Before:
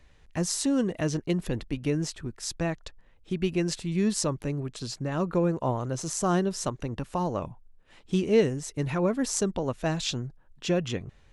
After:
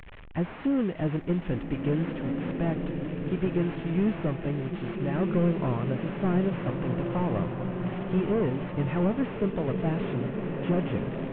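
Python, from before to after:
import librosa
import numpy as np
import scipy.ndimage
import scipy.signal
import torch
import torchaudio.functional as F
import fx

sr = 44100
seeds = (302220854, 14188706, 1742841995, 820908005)

y = fx.delta_mod(x, sr, bps=16000, step_db=-39.5)
y = fx.rev_bloom(y, sr, seeds[0], attack_ms=1770, drr_db=3.0)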